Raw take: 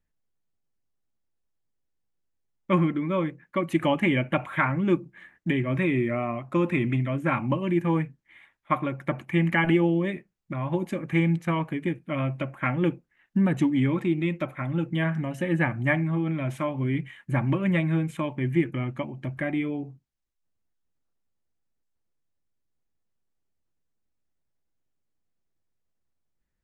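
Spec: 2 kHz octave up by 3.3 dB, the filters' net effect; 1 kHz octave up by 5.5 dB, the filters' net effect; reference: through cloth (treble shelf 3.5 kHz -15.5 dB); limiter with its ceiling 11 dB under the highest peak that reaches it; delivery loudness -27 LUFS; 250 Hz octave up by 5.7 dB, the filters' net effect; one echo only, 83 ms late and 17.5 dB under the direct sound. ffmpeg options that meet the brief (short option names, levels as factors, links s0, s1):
-af "equalizer=f=250:t=o:g=8,equalizer=f=1000:t=o:g=6,equalizer=f=2000:t=o:g=6.5,alimiter=limit=0.2:level=0:latency=1,highshelf=f=3500:g=-15.5,aecho=1:1:83:0.133,volume=0.75"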